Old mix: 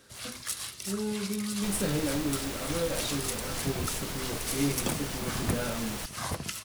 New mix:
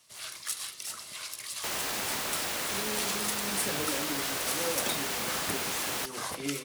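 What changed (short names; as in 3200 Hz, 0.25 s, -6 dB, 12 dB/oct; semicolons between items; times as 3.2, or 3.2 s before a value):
speech: entry +1.85 s; second sound +6.5 dB; master: add HPF 580 Hz 6 dB/oct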